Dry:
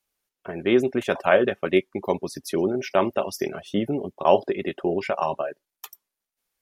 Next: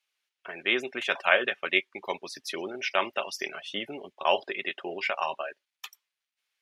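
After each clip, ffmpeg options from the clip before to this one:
-af "bandpass=f=2.7k:t=q:w=1.2:csg=0,volume=6dB"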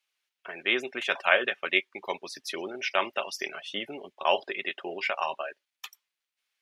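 -af "lowshelf=f=140:g=-5.5"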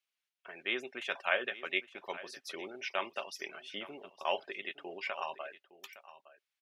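-af "aecho=1:1:862:0.15,volume=-8.5dB"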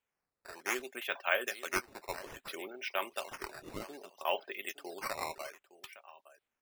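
-af "highpass=210,acrusher=samples=8:mix=1:aa=0.000001:lfo=1:lforange=12.8:lforate=0.62"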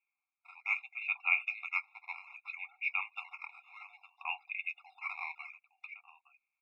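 -af "lowpass=f=2.4k:t=q:w=7.7,afftfilt=real='re*eq(mod(floor(b*sr/1024/700),2),1)':imag='im*eq(mod(floor(b*sr/1024/700),2),1)':win_size=1024:overlap=0.75,volume=-7.5dB"

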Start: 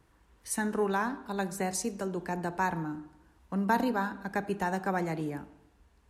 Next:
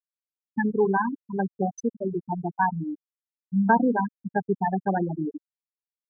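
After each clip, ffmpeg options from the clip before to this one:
-af "afftfilt=real='re*gte(hypot(re,im),0.141)':imag='im*gte(hypot(re,im),0.141)':win_size=1024:overlap=0.75,volume=8dB"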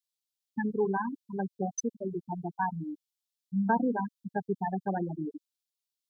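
-af "highshelf=f=2.5k:t=q:w=1.5:g=12,volume=-6dB"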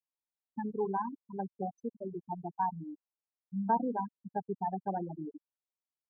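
-af "lowpass=f=950:t=q:w=2,volume=-6.5dB"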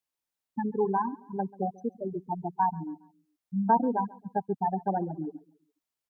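-af "aecho=1:1:138|276|414:0.0794|0.0302|0.0115,volume=6dB"

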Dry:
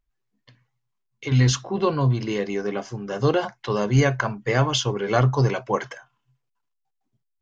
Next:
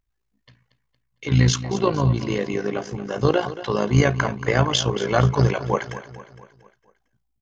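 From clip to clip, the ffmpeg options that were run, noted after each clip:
-af "aecho=1:1:229|458|687|916|1145:0.2|0.0998|0.0499|0.0249|0.0125,tremolo=f=56:d=0.667,volume=4dB"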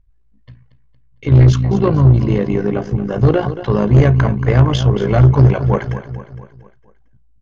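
-af "aemphasis=mode=reproduction:type=riaa,acontrast=69,volume=-3dB"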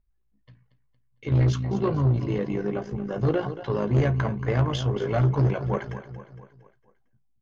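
-af "lowshelf=f=120:g=-8.5,flanger=delay=4.8:depth=4.7:regen=-53:speed=0.34:shape=triangular,volume=-5dB"

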